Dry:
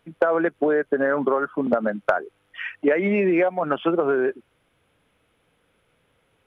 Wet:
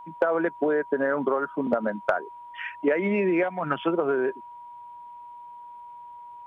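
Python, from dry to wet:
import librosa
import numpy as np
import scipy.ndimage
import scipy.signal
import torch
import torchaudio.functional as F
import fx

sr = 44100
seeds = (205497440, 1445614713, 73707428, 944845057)

y = fx.graphic_eq(x, sr, hz=(125, 500, 2000), db=(7, -6, 7), at=(3.43, 3.84))
y = y + 10.0 ** (-37.0 / 20.0) * np.sin(2.0 * np.pi * 960.0 * np.arange(len(y)) / sr)
y = y * librosa.db_to_amplitude(-3.5)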